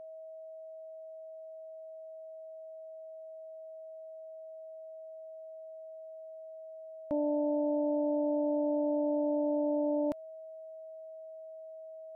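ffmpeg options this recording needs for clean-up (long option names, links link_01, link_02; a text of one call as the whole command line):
ffmpeg -i in.wav -af "bandreject=frequency=640:width=30" out.wav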